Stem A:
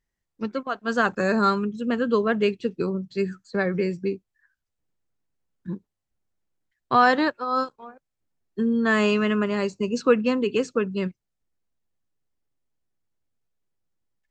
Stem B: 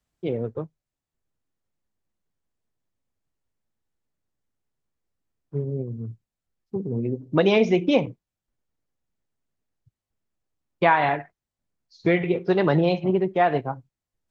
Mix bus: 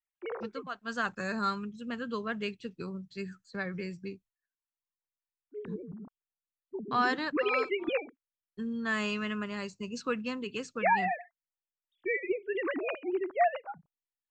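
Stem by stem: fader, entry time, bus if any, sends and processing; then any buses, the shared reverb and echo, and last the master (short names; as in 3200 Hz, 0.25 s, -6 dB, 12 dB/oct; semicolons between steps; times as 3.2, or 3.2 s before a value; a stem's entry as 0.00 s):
-6.5 dB, 0.00 s, no send, gate with hold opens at -43 dBFS
-3.0 dB, 0.00 s, no send, sine-wave speech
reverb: off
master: bell 420 Hz -9.5 dB 2.2 oct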